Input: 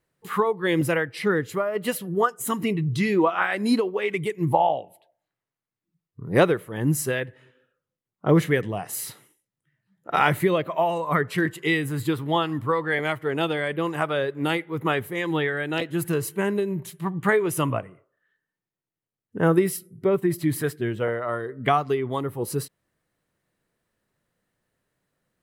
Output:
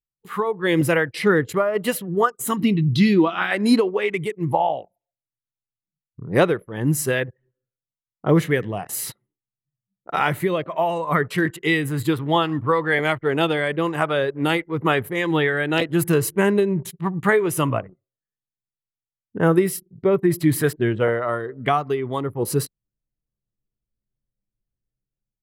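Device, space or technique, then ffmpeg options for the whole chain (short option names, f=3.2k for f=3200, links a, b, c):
voice memo with heavy noise removal: -filter_complex "[0:a]asettb=1/sr,asplit=3[a][b][c];[a]atrim=end=2.574[d];[b]atrim=start=2.57:end=3.51,asetpts=PTS-STARTPTS,afade=t=in:d=0.004:c=qsin,afade=t=out:st=0.936:d=0.004:c=qsin,equalizer=f=250:t=o:w=1:g=7,equalizer=f=500:t=o:w=1:g=-8,equalizer=f=1k:t=o:w=1:g=-5,equalizer=f=2k:t=o:w=1:g=-4,equalizer=f=4k:t=o:w=1:g=9,equalizer=f=8k:t=o:w=1:g=-10[e];[c]atrim=start=3.506[f];[d][e]acrossfade=d=0.004:c1=hsin:c2=qsin[g];[g][f]acrossfade=d=0.004:c1=qsin:c2=hsin,anlmdn=0.251,dynaudnorm=f=210:g=5:m=13dB,volume=-4.5dB"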